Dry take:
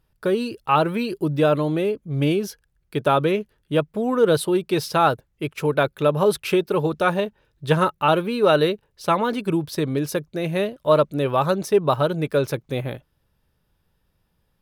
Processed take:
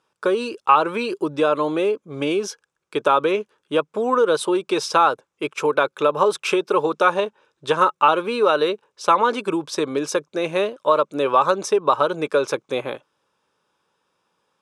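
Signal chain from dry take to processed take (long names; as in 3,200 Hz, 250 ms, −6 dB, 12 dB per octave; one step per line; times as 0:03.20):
downward compressor, threshold −18 dBFS, peak gain reduction 7 dB
loudspeaker in its box 470–8,100 Hz, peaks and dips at 680 Hz −7 dB, 1,100 Hz +4 dB, 1,900 Hz −9 dB, 3,000 Hz −4 dB, 4,400 Hz −8 dB
level +8.5 dB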